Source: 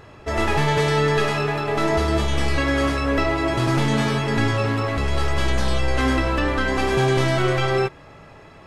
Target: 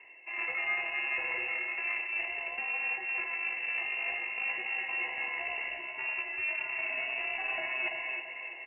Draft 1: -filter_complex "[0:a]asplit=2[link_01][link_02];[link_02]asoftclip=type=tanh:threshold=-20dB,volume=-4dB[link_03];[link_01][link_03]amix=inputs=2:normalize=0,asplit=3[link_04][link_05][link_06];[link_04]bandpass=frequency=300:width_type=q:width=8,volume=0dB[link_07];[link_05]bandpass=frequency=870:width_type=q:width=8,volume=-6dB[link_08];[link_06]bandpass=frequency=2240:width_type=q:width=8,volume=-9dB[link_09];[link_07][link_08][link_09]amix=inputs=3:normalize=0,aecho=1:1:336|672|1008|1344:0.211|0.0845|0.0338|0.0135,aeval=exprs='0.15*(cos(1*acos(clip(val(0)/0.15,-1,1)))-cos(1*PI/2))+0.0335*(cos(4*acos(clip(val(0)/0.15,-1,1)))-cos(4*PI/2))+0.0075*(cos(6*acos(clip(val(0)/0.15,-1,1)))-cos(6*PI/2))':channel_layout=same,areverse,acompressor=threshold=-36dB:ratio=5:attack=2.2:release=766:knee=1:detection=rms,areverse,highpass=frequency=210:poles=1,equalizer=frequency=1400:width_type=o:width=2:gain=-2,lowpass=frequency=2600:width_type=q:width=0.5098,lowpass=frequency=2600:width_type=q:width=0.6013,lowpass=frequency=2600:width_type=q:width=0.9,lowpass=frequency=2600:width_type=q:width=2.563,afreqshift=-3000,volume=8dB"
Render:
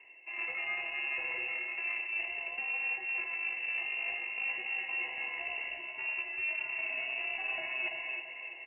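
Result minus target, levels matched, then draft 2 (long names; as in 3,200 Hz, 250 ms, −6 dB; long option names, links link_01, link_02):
1,000 Hz band −3.0 dB
-filter_complex "[0:a]asplit=2[link_01][link_02];[link_02]asoftclip=type=tanh:threshold=-20dB,volume=-4dB[link_03];[link_01][link_03]amix=inputs=2:normalize=0,asplit=3[link_04][link_05][link_06];[link_04]bandpass=frequency=300:width_type=q:width=8,volume=0dB[link_07];[link_05]bandpass=frequency=870:width_type=q:width=8,volume=-6dB[link_08];[link_06]bandpass=frequency=2240:width_type=q:width=8,volume=-9dB[link_09];[link_07][link_08][link_09]amix=inputs=3:normalize=0,aecho=1:1:336|672|1008|1344:0.211|0.0845|0.0338|0.0135,aeval=exprs='0.15*(cos(1*acos(clip(val(0)/0.15,-1,1)))-cos(1*PI/2))+0.0335*(cos(4*acos(clip(val(0)/0.15,-1,1)))-cos(4*PI/2))+0.0075*(cos(6*acos(clip(val(0)/0.15,-1,1)))-cos(6*PI/2))':channel_layout=same,areverse,acompressor=threshold=-36dB:ratio=5:attack=2.2:release=766:knee=1:detection=rms,areverse,highpass=frequency=210:poles=1,equalizer=frequency=1400:width_type=o:width=2:gain=4.5,lowpass=frequency=2600:width_type=q:width=0.5098,lowpass=frequency=2600:width_type=q:width=0.6013,lowpass=frequency=2600:width_type=q:width=0.9,lowpass=frequency=2600:width_type=q:width=2.563,afreqshift=-3000,volume=8dB"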